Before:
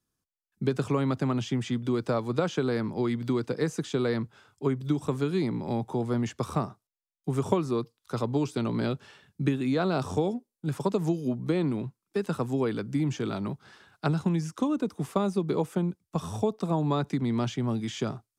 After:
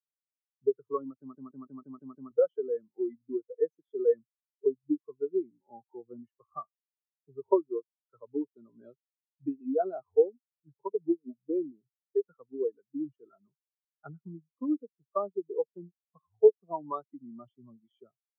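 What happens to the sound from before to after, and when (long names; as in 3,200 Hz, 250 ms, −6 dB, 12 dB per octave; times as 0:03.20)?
0:01.19: stutter in place 0.16 s, 7 plays
whole clip: parametric band 160 Hz −15 dB 2.6 octaves; every bin expanded away from the loudest bin 4 to 1; level +7.5 dB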